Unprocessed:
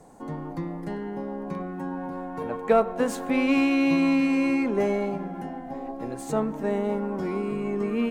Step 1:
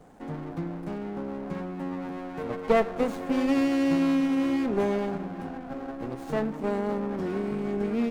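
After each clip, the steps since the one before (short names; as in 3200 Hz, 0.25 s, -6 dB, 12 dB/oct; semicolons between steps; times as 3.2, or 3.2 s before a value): running maximum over 17 samples; gain -1 dB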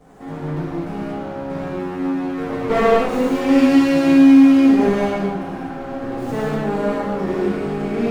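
reverb, pre-delay 3 ms, DRR -9.5 dB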